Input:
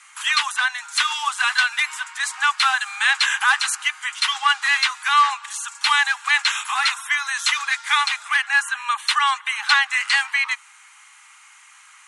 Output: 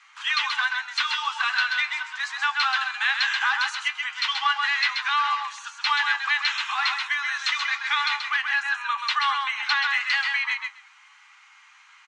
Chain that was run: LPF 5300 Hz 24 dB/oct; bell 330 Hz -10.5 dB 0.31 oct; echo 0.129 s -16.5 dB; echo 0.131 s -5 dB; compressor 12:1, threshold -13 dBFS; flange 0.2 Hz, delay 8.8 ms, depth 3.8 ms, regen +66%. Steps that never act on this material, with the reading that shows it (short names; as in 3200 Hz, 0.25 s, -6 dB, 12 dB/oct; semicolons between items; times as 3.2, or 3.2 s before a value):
bell 330 Hz: input band starts at 760 Hz